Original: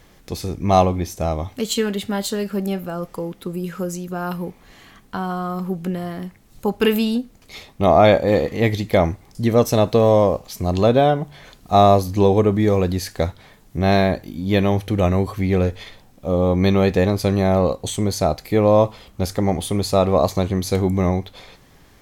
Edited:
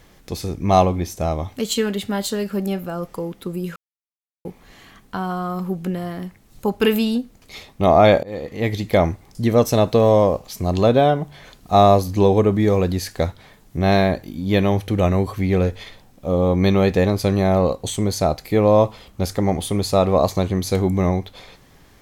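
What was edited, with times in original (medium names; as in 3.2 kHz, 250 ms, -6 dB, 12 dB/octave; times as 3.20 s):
3.76–4.45 s: mute
8.23–8.89 s: fade in, from -23 dB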